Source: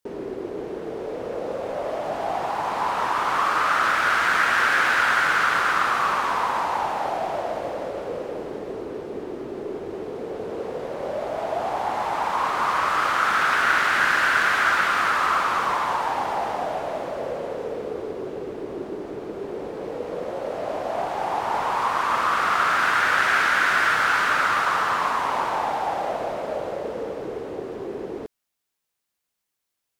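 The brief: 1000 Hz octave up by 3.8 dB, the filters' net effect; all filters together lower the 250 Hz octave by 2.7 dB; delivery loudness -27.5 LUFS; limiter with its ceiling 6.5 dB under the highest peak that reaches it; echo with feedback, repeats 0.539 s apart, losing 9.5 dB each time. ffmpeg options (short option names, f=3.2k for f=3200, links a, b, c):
-af "equalizer=f=250:t=o:g=-4.5,equalizer=f=1k:t=o:g=5,alimiter=limit=-11.5dB:level=0:latency=1,aecho=1:1:539|1078|1617|2156:0.335|0.111|0.0365|0.012,volume=-6dB"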